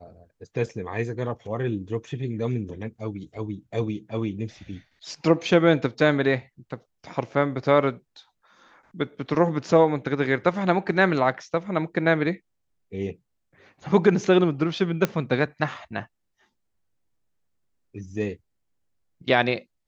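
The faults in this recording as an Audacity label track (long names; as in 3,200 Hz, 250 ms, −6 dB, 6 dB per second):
15.050000	15.050000	click −9 dBFS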